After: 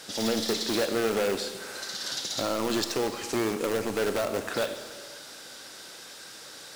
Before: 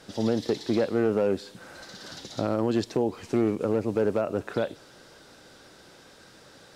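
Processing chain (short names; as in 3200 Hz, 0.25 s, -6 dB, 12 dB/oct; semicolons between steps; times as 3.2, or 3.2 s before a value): tilt +3 dB/oct; in parallel at -5.5 dB: wrapped overs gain 25 dB; on the sum: Schroeder reverb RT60 1.7 s, combs from 28 ms, DRR 8 dB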